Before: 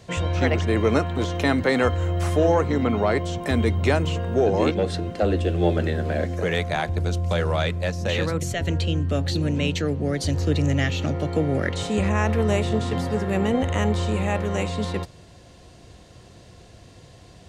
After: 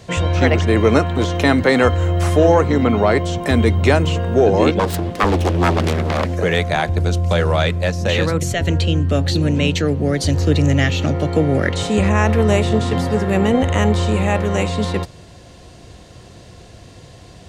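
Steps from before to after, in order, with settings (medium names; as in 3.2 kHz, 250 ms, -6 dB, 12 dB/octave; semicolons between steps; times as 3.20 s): 4.79–6.32 s: self-modulated delay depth 0.78 ms; 9.96–10.95 s: word length cut 12-bit, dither none; trim +6.5 dB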